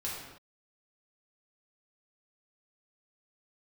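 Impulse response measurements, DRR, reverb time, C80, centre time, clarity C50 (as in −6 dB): −6.5 dB, non-exponential decay, 3.0 dB, 68 ms, 0.5 dB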